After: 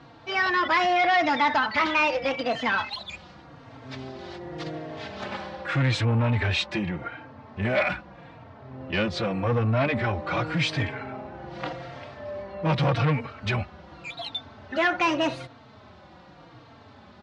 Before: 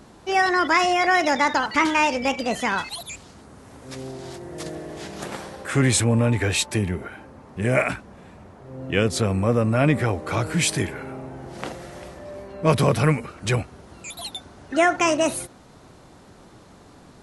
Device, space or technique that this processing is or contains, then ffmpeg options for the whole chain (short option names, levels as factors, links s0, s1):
barber-pole flanger into a guitar amplifier: -filter_complex "[0:a]asplit=2[s0][s1];[s1]adelay=3.8,afreqshift=-0.85[s2];[s0][s2]amix=inputs=2:normalize=1,asoftclip=type=tanh:threshold=0.0944,highpass=86,equalizer=f=180:t=q:w=4:g=-4,equalizer=f=260:t=q:w=4:g=-4,equalizer=f=400:t=q:w=4:g=-9,lowpass=f=4300:w=0.5412,lowpass=f=4300:w=1.3066,volume=1.68"